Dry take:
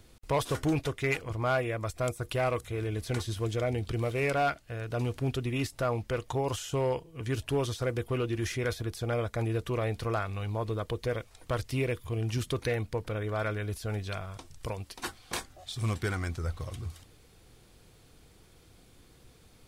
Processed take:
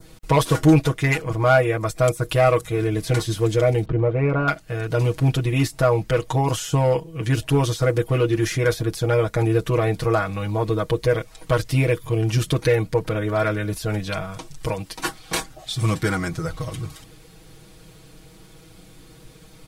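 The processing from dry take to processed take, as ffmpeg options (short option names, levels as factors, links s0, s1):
-filter_complex "[0:a]asettb=1/sr,asplit=3[s0][s1][s2];[s0]atrim=end=3.854[s3];[s1]atrim=start=3.85:end=4.48,asetpts=PTS-STARTPTS,afade=t=in:d=0.004:c=qsin,afade=t=out:st=0.626:d=0.004:c=qsin,lowpass=1200[s4];[s2]atrim=start=4.476[s5];[s3][s4]acrossfade=d=0.004:c1=hsin:c2=qsin[s6];[s6][s5]acrossfade=d=0.004:c1=qsin:c2=hsin,equalizer=f=190:w=1.6:g=3,aecho=1:1:6.3:0.97,adynamicequalizer=threshold=0.00447:dfrequency=3000:dqfactor=1.4:tfrequency=3000:tqfactor=1.4:attack=5:release=100:ratio=0.375:range=2:mode=cutabove:tftype=bell,volume=2.37"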